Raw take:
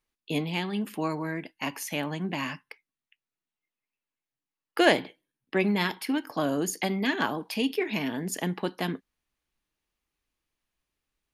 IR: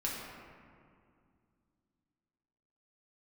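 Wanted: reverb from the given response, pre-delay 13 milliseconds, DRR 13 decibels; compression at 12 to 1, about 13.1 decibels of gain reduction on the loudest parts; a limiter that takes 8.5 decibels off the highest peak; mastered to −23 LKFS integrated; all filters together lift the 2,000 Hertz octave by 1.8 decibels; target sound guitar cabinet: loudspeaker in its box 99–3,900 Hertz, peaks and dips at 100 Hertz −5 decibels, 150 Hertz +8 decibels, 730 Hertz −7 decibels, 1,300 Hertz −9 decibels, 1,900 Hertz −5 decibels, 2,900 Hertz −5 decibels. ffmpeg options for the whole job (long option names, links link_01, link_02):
-filter_complex "[0:a]equalizer=frequency=2000:width_type=o:gain=8,acompressor=threshold=-25dB:ratio=12,alimiter=limit=-21dB:level=0:latency=1,asplit=2[link_01][link_02];[1:a]atrim=start_sample=2205,adelay=13[link_03];[link_02][link_03]afir=irnorm=-1:irlink=0,volume=-17dB[link_04];[link_01][link_04]amix=inputs=2:normalize=0,highpass=99,equalizer=frequency=100:width_type=q:width=4:gain=-5,equalizer=frequency=150:width_type=q:width=4:gain=8,equalizer=frequency=730:width_type=q:width=4:gain=-7,equalizer=frequency=1300:width_type=q:width=4:gain=-9,equalizer=frequency=1900:width_type=q:width=4:gain=-5,equalizer=frequency=2900:width_type=q:width=4:gain=-5,lowpass=frequency=3900:width=0.5412,lowpass=frequency=3900:width=1.3066,volume=11dB"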